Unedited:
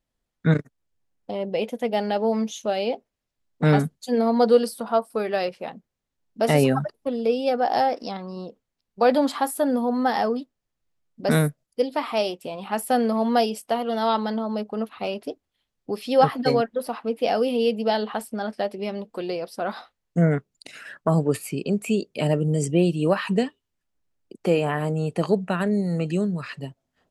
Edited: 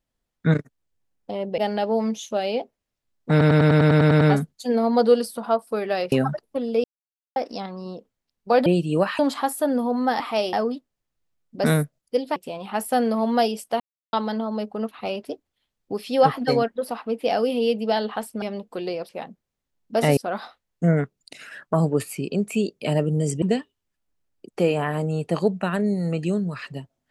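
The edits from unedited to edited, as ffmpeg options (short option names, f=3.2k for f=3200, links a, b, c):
-filter_complex "[0:a]asplit=25[a][b][c][d][e][f][g][h][i][j][k][l][m][n][o][p][q][r][s][t][u][v][w][x][y];[a]atrim=end=1.582[z];[b]atrim=start=1.908:end=3.742[aa];[c]atrim=start=3.638:end=3.742[ab];[d]atrim=start=3.638:end=3.742[ac];[e]atrim=start=3.638:end=3.742[ad];[f]atrim=start=3.638:end=3.742[ae];[g]atrim=start=3.638:end=3.742[af];[h]atrim=start=3.638:end=3.742[ag];[i]atrim=start=3.638:end=3.742[ah];[j]atrim=start=3.638:end=3.742[ai];[k]atrim=start=3.638:end=5.552[aj];[l]atrim=start=6.628:end=7.35,asetpts=PTS-STARTPTS,afade=t=out:st=0.718:d=0.004:c=hsin[ak];[m]atrim=start=7.35:end=7.87,asetpts=PTS-STARTPTS,volume=0[al];[n]atrim=start=7.87:end=9.172,asetpts=PTS-STARTPTS,afade=t=in:d=0.004:c=hsin[am];[o]atrim=start=22.758:end=23.292[an];[p]atrim=start=9.168:end=10.182[ao];[q]atrim=start=12.008:end=12.342[ap];[r]atrim=start=10.178:end=12.012[aq];[s]atrim=start=12.338:end=13.78,asetpts=PTS-STARTPTS,afade=t=out:st=1.438:d=0.004:c=hsin[ar];[t]atrim=start=13.78:end=14.11,asetpts=PTS-STARTPTS,volume=0[as];[u]atrim=start=14.11:end=18.402,asetpts=PTS-STARTPTS,afade=t=in:d=0.004:c=hsin[at];[v]atrim=start=18.838:end=19.512[au];[w]atrim=start=5.548:end=6.632[av];[x]atrim=start=19.508:end=22.762[aw];[y]atrim=start=23.288[ax];[z][aa]acrossfade=d=0.004:c1=hsin:c2=hsin[ay];[ay][ab]acrossfade=d=0.004:c1=hsin:c2=hsin[az];[az][ac]acrossfade=d=0.004:c1=hsin:c2=hsin[ba];[ba][ad]acrossfade=d=0.004:c1=hsin:c2=hsin[bb];[bb][ae]acrossfade=d=0.004:c1=hsin:c2=hsin[bc];[bc][af]acrossfade=d=0.004:c1=hsin:c2=hsin[bd];[bd][ag]acrossfade=d=0.004:c1=hsin:c2=hsin[be];[be][ah]acrossfade=d=0.004:c1=hsin:c2=hsin[bf];[bf][ai]acrossfade=d=0.004:c1=hsin:c2=hsin[bg];[bg][aj]acrossfade=d=0.004:c1=hsin:c2=hsin[bh];[ak][al][am]concat=n=3:v=0:a=1[bi];[bh][bi]acrossfade=d=0.004:c1=hsin:c2=hsin[bj];[bj][an]acrossfade=d=0.004:c1=hsin:c2=hsin[bk];[bk][ao]acrossfade=d=0.004:c1=hsin:c2=hsin[bl];[bl][ap]acrossfade=d=0.004:c1=hsin:c2=hsin[bm];[bm][aq]acrossfade=d=0.004:c1=hsin:c2=hsin[bn];[ar][as][at]concat=n=3:v=0:a=1[bo];[bn][bo]acrossfade=d=0.004:c1=hsin:c2=hsin[bp];[bp][au]acrossfade=d=0.004:c1=hsin:c2=hsin[bq];[bq][av]acrossfade=d=0.004:c1=hsin:c2=hsin[br];[br][aw]acrossfade=d=0.004:c1=hsin:c2=hsin[bs];[bs][ax]acrossfade=d=0.004:c1=hsin:c2=hsin"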